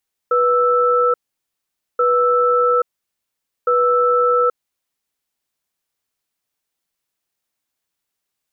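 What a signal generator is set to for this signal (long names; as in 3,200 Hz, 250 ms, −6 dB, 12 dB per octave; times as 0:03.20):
tone pair in a cadence 490 Hz, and 1,320 Hz, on 0.83 s, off 0.85 s, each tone −15 dBFS 4.85 s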